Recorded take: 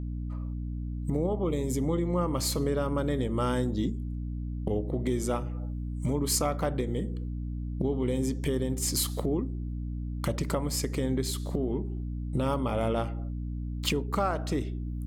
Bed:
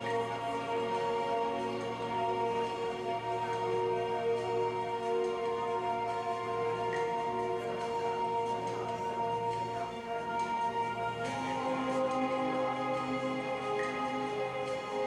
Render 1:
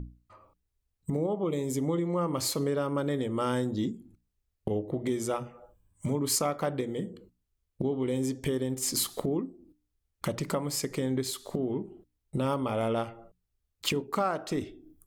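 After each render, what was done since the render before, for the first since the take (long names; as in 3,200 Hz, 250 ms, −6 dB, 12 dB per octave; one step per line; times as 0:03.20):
mains-hum notches 60/120/180/240/300 Hz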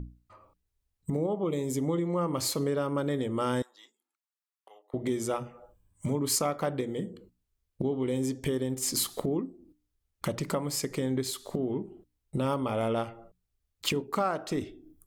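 0:03.62–0:04.94: four-pole ladder high-pass 880 Hz, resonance 40%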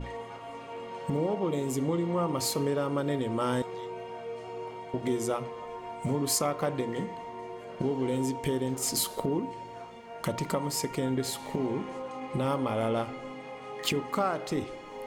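mix in bed −7 dB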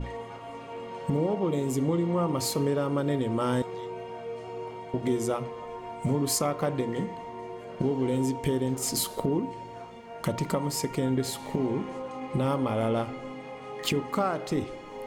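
low-shelf EQ 350 Hz +4.5 dB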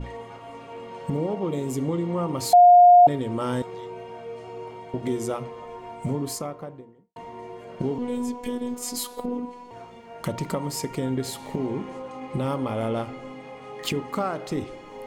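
0:02.53–0:03.07: beep over 710 Hz −8.5 dBFS
0:05.91–0:07.16: fade out and dull
0:07.98–0:09.71: phases set to zero 245 Hz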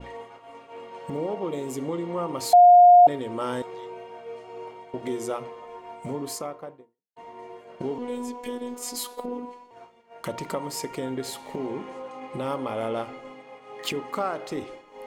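downward expander −36 dBFS
bass and treble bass −11 dB, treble −2 dB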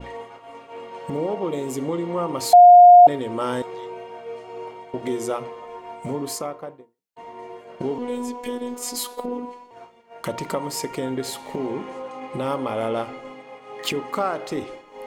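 level +4 dB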